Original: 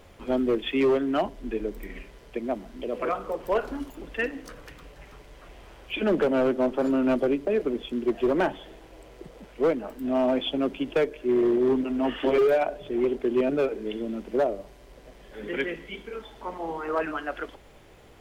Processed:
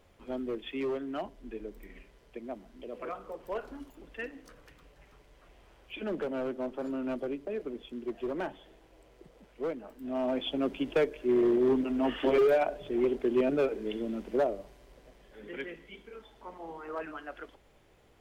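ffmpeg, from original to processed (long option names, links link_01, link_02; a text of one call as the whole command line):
ffmpeg -i in.wav -af "volume=-3dB,afade=type=in:start_time=9.98:duration=0.83:silence=0.398107,afade=type=out:start_time=14.25:duration=1.18:silence=0.421697" out.wav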